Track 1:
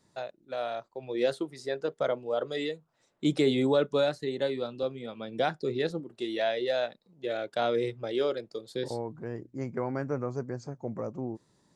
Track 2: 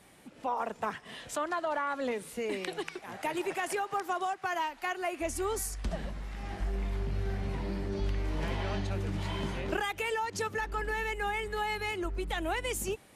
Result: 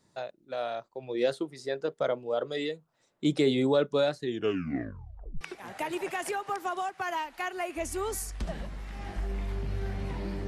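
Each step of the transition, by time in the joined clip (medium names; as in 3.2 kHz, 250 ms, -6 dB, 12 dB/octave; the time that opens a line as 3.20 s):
track 1
4.20 s: tape stop 1.21 s
5.41 s: go over to track 2 from 2.85 s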